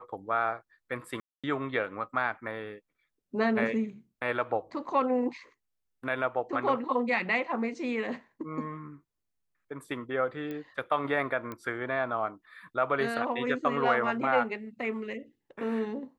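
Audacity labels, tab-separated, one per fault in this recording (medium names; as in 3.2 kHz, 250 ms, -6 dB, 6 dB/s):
1.200000	1.440000	dropout 236 ms
10.510000	10.510000	pop -26 dBFS
11.520000	11.520000	pop -24 dBFS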